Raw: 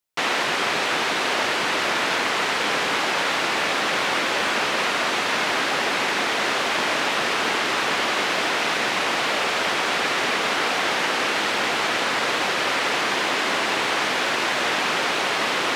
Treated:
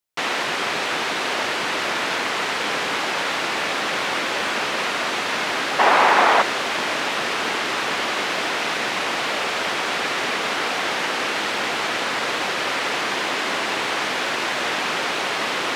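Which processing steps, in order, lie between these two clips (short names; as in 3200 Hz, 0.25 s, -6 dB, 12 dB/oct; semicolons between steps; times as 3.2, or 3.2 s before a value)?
5.79–6.42 bell 880 Hz +14 dB 2 oct; gain -1 dB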